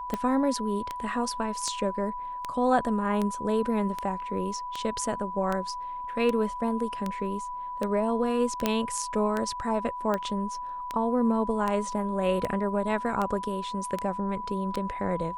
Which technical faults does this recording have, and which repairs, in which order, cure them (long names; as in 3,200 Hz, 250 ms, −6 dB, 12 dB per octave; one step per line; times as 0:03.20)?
scratch tick 78 rpm −16 dBFS
whistle 990 Hz −33 dBFS
0:08.66: click −9 dBFS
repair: click removal
notch filter 990 Hz, Q 30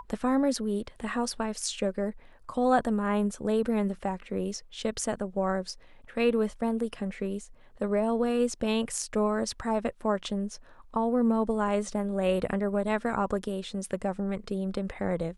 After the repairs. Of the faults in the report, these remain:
0:08.66: click